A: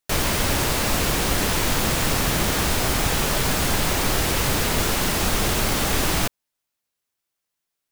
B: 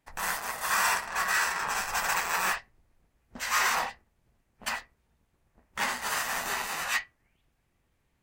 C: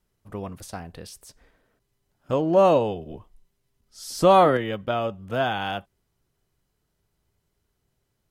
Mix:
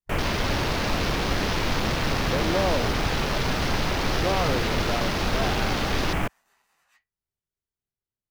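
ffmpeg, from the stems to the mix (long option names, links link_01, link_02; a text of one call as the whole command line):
ffmpeg -i stem1.wav -i stem2.wav -i stem3.wav -filter_complex "[0:a]volume=-2dB[link_01];[1:a]volume=-19.5dB[link_02];[2:a]alimiter=limit=-12dB:level=0:latency=1,volume=-6.5dB[link_03];[link_01][link_02][link_03]amix=inputs=3:normalize=0,afwtdn=0.0282" out.wav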